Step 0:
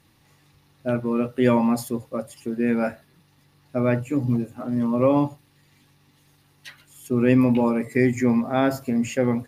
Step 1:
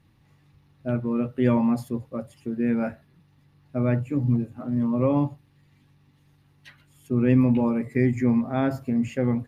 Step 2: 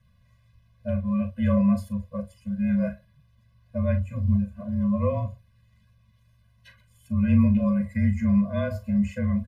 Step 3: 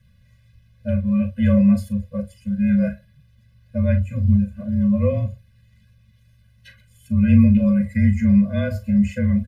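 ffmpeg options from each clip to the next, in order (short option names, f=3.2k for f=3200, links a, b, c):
-af "bass=f=250:g=8,treble=f=4k:g=-8,volume=-5.5dB"
-filter_complex "[0:a]asplit=2[a][b];[b]adelay=39,volume=-10dB[c];[a][c]amix=inputs=2:normalize=0,afreqshift=-30,afftfilt=real='re*eq(mod(floor(b*sr/1024/240),2),0)':imag='im*eq(mod(floor(b*sr/1024/240),2),0)':win_size=1024:overlap=0.75"
-af "asuperstop=centerf=870:order=4:qfactor=1.2,volume=6dB"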